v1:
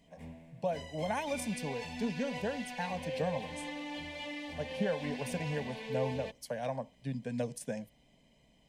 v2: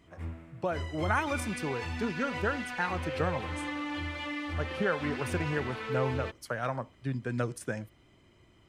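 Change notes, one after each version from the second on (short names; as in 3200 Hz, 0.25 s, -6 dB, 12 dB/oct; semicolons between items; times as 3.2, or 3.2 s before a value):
master: remove fixed phaser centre 350 Hz, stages 6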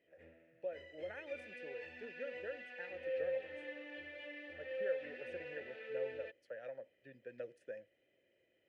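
speech -5.0 dB; master: add vowel filter e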